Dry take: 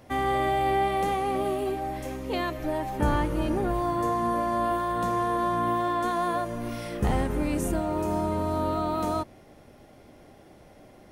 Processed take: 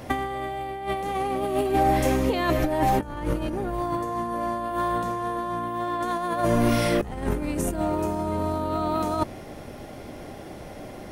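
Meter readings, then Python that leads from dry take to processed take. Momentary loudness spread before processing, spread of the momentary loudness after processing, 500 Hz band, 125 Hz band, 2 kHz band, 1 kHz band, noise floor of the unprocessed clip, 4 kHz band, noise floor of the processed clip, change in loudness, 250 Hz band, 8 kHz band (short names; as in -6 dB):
6 LU, 18 LU, +2.0 dB, +2.0 dB, +1.5 dB, +0.5 dB, -52 dBFS, +3.0 dB, -40 dBFS, +1.5 dB, +2.5 dB, +4.0 dB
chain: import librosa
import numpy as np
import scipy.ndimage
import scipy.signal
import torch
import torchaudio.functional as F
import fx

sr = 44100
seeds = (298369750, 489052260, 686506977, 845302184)

y = fx.over_compress(x, sr, threshold_db=-31.0, ratio=-0.5)
y = F.gain(torch.from_numpy(y), 7.0).numpy()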